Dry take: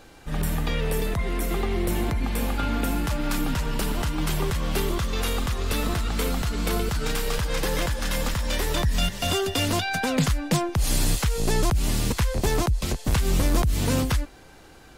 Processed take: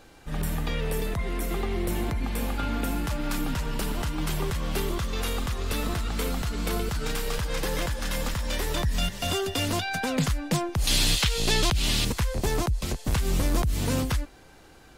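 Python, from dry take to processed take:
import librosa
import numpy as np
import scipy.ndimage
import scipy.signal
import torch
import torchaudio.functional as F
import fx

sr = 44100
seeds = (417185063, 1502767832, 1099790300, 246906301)

y = fx.peak_eq(x, sr, hz=3400.0, db=13.5, octaves=1.6, at=(10.87, 12.05))
y = y * librosa.db_to_amplitude(-3.0)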